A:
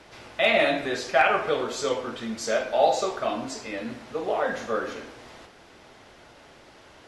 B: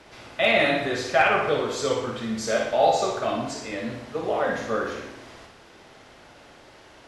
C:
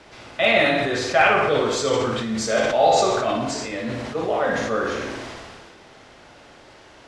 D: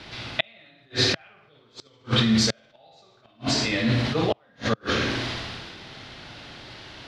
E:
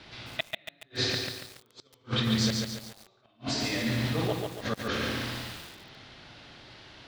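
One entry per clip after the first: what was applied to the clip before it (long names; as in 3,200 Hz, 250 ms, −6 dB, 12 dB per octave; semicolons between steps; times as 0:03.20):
dynamic equaliser 120 Hz, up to +8 dB, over −48 dBFS, Q 0.95; on a send: flutter between parallel walls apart 10.1 metres, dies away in 0.62 s
low-pass filter 10,000 Hz 24 dB per octave; level that may fall only so fast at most 26 dB per second; level +2 dB
gate with flip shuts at −13 dBFS, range −39 dB; octave-band graphic EQ 125/500/1,000/4,000/8,000 Hz +6/−6/−3/+9/−10 dB; level +5 dB
feedback echo at a low word length 141 ms, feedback 55%, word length 6 bits, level −3 dB; level −7.5 dB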